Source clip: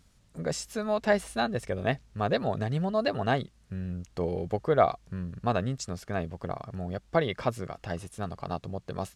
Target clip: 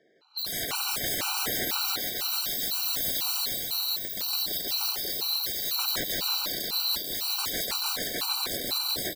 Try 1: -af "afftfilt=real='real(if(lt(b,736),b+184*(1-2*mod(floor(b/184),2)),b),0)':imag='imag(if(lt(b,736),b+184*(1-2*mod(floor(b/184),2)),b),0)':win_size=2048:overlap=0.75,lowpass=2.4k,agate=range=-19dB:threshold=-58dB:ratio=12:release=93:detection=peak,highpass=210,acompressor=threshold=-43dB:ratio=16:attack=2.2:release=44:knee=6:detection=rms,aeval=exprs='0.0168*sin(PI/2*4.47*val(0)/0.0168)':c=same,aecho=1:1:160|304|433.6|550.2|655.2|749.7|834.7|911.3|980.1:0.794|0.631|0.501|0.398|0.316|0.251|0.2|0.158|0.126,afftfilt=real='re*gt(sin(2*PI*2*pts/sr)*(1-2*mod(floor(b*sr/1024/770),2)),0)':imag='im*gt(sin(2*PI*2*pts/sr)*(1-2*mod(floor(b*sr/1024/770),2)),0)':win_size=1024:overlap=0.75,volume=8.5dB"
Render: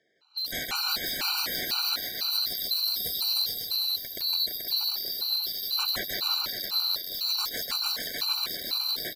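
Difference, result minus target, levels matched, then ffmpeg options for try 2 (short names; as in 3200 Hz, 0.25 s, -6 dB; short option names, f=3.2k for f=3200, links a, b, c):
compressor: peak gain reduction +9 dB; 250 Hz band -5.5 dB
-af "afftfilt=real='real(if(lt(b,736),b+184*(1-2*mod(floor(b/184),2)),b),0)':imag='imag(if(lt(b,736),b+184*(1-2*mod(floor(b/184),2)),b),0)':win_size=2048:overlap=0.75,lowpass=2.4k,agate=range=-19dB:threshold=-58dB:ratio=12:release=93:detection=peak,highpass=210,equalizer=f=350:t=o:w=3:g=10.5,acompressor=threshold=-32.5dB:ratio=16:attack=2.2:release=44:knee=6:detection=rms,aeval=exprs='0.0168*sin(PI/2*4.47*val(0)/0.0168)':c=same,aecho=1:1:160|304|433.6|550.2|655.2|749.7|834.7|911.3|980.1:0.794|0.631|0.501|0.398|0.316|0.251|0.2|0.158|0.126,afftfilt=real='re*gt(sin(2*PI*2*pts/sr)*(1-2*mod(floor(b*sr/1024/770),2)),0)':imag='im*gt(sin(2*PI*2*pts/sr)*(1-2*mod(floor(b*sr/1024/770),2)),0)':win_size=1024:overlap=0.75,volume=8.5dB"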